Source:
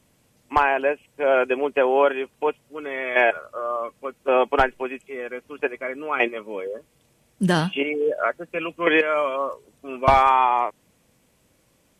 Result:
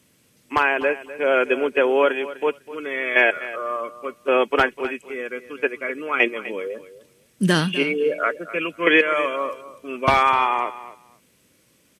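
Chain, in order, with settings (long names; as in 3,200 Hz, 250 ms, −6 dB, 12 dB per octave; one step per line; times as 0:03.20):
high-pass filter 200 Hz 6 dB per octave
parametric band 780 Hz −10 dB 0.95 octaves
notch filter 7,200 Hz, Q 19
repeating echo 251 ms, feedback 16%, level −15.5 dB
level +5 dB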